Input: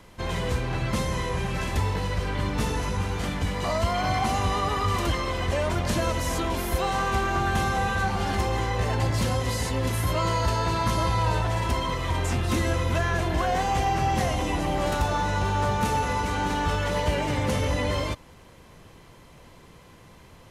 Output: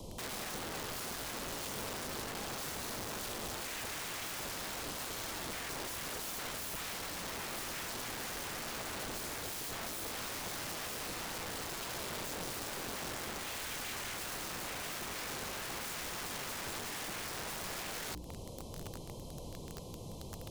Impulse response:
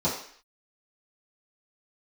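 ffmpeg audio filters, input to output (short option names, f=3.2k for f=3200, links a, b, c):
-filter_complex "[0:a]bandreject=f=60:t=h:w=6,bandreject=f=120:t=h:w=6,bandreject=f=180:t=h:w=6,bandreject=f=240:t=h:w=6,bandreject=f=300:t=h:w=6,bandreject=f=360:t=h:w=6,bandreject=f=420:t=h:w=6,asoftclip=type=tanh:threshold=-26.5dB,acompressor=threshold=-39dB:ratio=6,asuperstop=centerf=1700:order=4:qfactor=0.56,acrossover=split=180|3000[a][b][c];[a]acompressor=threshold=-44dB:ratio=6[d];[d][b][c]amix=inputs=3:normalize=0,aeval=exprs='(mod(133*val(0)+1,2)-1)/133':c=same,volume=6dB"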